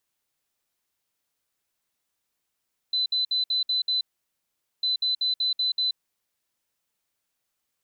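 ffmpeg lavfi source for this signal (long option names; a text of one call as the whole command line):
ffmpeg -f lavfi -i "aevalsrc='0.0841*sin(2*PI*4020*t)*clip(min(mod(mod(t,1.9),0.19),0.13-mod(mod(t,1.9),0.19))/0.005,0,1)*lt(mod(t,1.9),1.14)':duration=3.8:sample_rate=44100" out.wav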